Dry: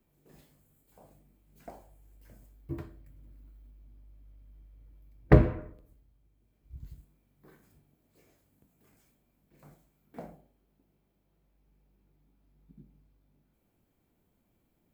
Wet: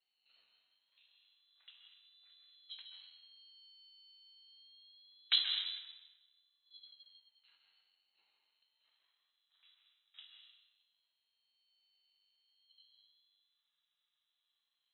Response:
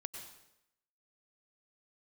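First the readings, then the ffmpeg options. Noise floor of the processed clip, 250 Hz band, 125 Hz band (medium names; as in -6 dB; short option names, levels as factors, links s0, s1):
under -85 dBFS, under -40 dB, under -40 dB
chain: -filter_complex "[0:a]highshelf=f=2200:g=10,lowpass=f=3200:t=q:w=0.5098,lowpass=f=3200:t=q:w=0.6013,lowpass=f=3200:t=q:w=0.9,lowpass=f=3200:t=q:w=2.563,afreqshift=-3800,highpass=f=930:w=0.5412,highpass=f=930:w=1.3066[s0];[1:a]atrim=start_sample=2205,asetrate=32193,aresample=44100[s1];[s0][s1]afir=irnorm=-1:irlink=0,aeval=exprs='val(0)*sin(2*PI*450*n/s+450*0.5/0.25*sin(2*PI*0.25*n/s))':c=same,volume=0.376"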